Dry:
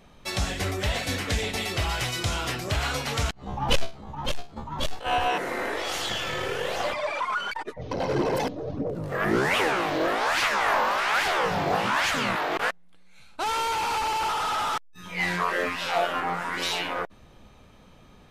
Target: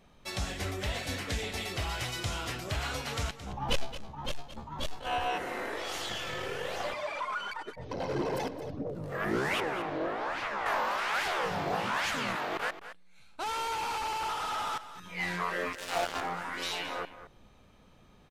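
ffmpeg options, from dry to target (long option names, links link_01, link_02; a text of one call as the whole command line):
ffmpeg -i in.wav -filter_complex "[0:a]asettb=1/sr,asplit=3[link_01][link_02][link_03];[link_01]atrim=end=9.604[link_04];[link_02]atrim=start=9.6:end=10.66,asetpts=PTS-STARTPTS,afade=type=in:duration=0.004:curve=qsin,afade=type=out:start_time=1.056:duration=0.004:curve=qsin,lowpass=frequency=1300:poles=1[link_05];[link_03]atrim=start=10.656[link_06];[link_04][link_05]acrossfade=duration=0.004:curve1=hsin:curve2=qsin[link_07];[link_07][link_06]acrossfade=duration=0.004:curve1=qsin:curve2=hsin,asettb=1/sr,asplit=3[link_08][link_09][link_10];[link_08]atrim=end=15.734[link_11];[link_09]atrim=start=15.73:end=16.21,asetpts=PTS-STARTPTS,afade=type=in:duration=0.004:curve=qsin,afade=type=out:start_time=0.476:duration=0.004:curve=qsin,acrusher=bits=3:mix=0:aa=0.5[link_12];[link_10]atrim=start=16.206[link_13];[link_11][link_12]acrossfade=duration=0.004:curve1=hsin:curve2=qsin[link_14];[link_14][link_13]acrossfade=duration=0.004:curve1=qsin:curve2=hsin,asplit=2[link_15][link_16];[link_16]aecho=0:1:220:0.224[link_17];[link_15][link_17]amix=inputs=2:normalize=0,volume=-7dB" out.wav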